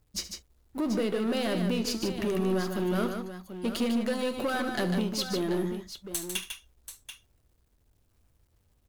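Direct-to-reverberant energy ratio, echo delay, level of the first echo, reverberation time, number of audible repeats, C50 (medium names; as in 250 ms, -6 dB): no reverb, 72 ms, -14.5 dB, no reverb, 3, no reverb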